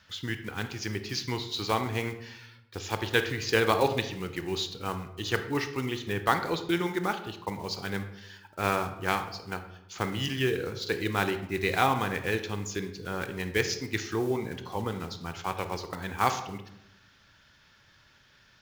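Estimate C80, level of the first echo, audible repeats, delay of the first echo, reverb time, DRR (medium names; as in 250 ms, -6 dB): 12.5 dB, no echo, no echo, no echo, 0.85 s, 8.0 dB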